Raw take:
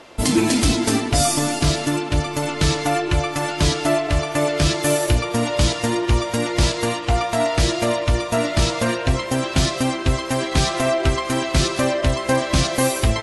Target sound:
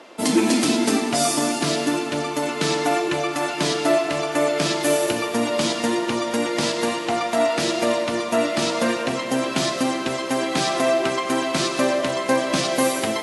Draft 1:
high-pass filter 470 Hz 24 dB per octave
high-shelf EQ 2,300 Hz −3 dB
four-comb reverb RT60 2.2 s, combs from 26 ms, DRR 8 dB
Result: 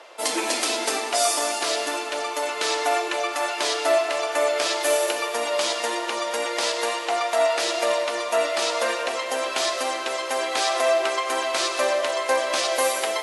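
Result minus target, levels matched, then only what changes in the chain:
250 Hz band −13.5 dB
change: high-pass filter 190 Hz 24 dB per octave

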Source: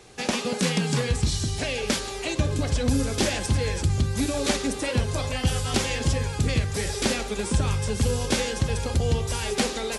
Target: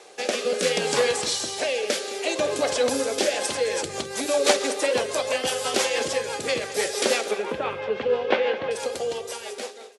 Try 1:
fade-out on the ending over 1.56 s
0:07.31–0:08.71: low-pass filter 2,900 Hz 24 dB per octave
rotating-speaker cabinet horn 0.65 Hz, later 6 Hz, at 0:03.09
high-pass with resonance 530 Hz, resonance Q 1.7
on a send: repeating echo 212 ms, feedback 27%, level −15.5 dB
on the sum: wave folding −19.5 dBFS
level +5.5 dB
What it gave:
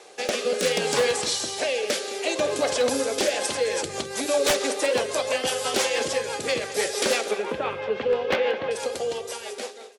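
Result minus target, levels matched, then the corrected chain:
wave folding: distortion +28 dB
fade-out on the ending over 1.56 s
0:07.31–0:08.71: low-pass filter 2,900 Hz 24 dB per octave
rotating-speaker cabinet horn 0.65 Hz, later 6 Hz, at 0:03.09
high-pass with resonance 530 Hz, resonance Q 1.7
on a send: repeating echo 212 ms, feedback 27%, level −15.5 dB
on the sum: wave folding −10.5 dBFS
level +5.5 dB

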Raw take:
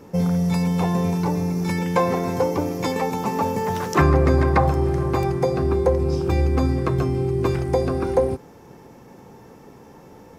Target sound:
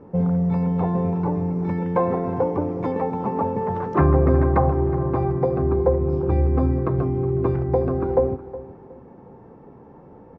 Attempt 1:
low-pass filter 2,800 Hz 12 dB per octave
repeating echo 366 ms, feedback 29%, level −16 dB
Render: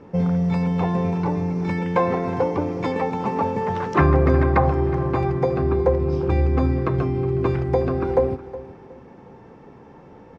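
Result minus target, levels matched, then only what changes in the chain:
2,000 Hz band +7.5 dB
change: low-pass filter 1,100 Hz 12 dB per octave

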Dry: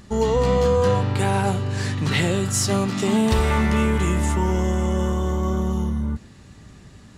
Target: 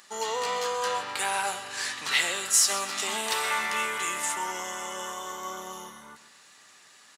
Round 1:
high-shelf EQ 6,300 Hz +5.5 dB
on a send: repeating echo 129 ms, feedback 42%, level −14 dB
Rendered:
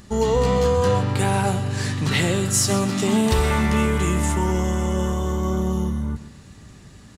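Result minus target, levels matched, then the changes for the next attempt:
1,000 Hz band −2.5 dB
add first: high-pass filter 1,000 Hz 12 dB per octave

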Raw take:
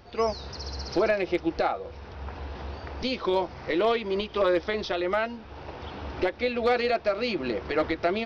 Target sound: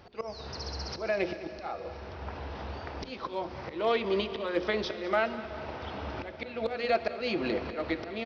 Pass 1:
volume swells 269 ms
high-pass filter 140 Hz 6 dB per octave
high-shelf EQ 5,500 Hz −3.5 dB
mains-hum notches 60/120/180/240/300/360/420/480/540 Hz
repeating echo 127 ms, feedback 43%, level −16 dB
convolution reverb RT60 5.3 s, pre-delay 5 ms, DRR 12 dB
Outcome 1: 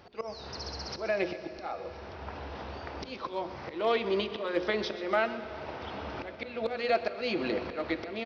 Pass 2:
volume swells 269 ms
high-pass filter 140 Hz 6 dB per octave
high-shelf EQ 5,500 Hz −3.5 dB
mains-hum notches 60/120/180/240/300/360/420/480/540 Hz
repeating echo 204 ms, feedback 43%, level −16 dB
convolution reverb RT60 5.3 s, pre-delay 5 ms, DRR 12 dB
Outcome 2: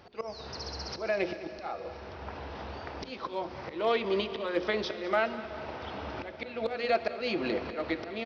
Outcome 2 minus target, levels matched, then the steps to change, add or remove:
125 Hz band −3.0 dB
change: high-pass filter 62 Hz 6 dB per octave

